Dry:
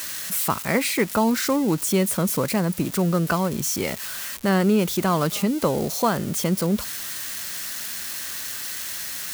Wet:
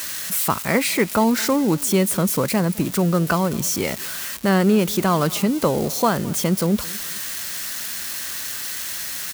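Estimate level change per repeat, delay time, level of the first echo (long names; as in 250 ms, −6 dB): −8.0 dB, 213 ms, −22.0 dB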